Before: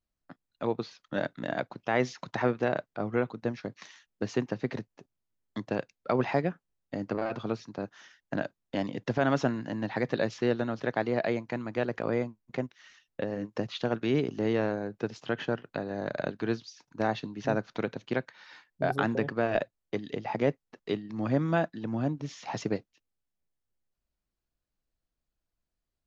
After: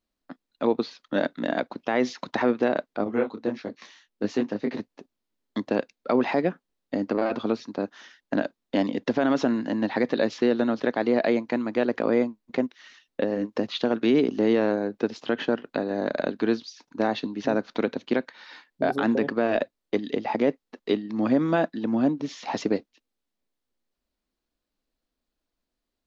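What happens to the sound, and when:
3.04–4.8 detuned doubles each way 57 cents
whole clip: graphic EQ 125/250/500/1000/2000/4000 Hz -9/+11/+5/+4/+3/+7 dB; limiter -11.5 dBFS

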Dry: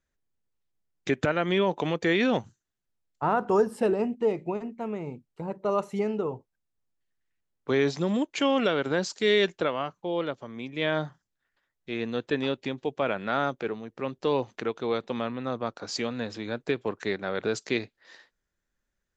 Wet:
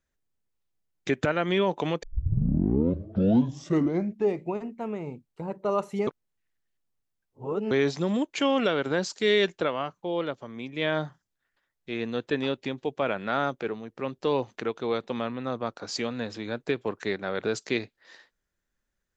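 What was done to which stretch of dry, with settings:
2.03 tape start 2.39 s
6.07–7.71 reverse

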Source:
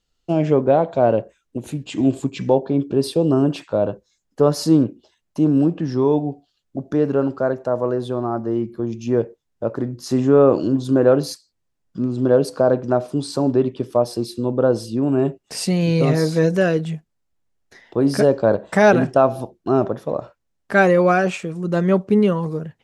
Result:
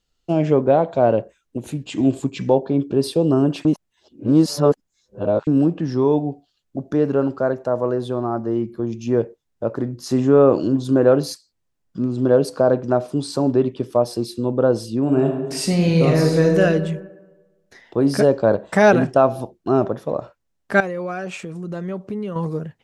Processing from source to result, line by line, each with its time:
3.65–5.47 reverse
15.02–16.62 reverb throw, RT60 1.2 s, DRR 3 dB
20.8–22.36 compressor 3:1, threshold -28 dBFS

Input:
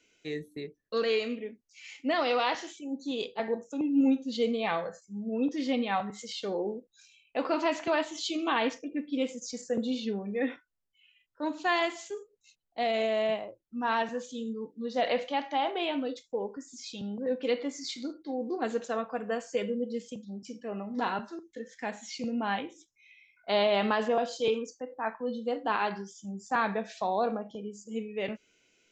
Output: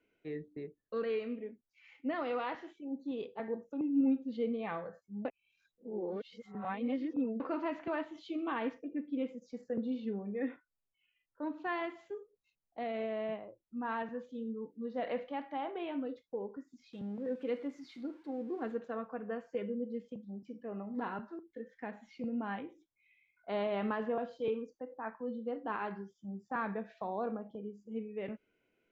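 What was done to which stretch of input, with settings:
5.25–7.4 reverse
16.93–18.72 switching spikes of -35 dBFS
whole clip: dynamic EQ 730 Hz, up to -6 dB, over -40 dBFS, Q 1.2; LPF 1500 Hz 12 dB/oct; gain -4 dB

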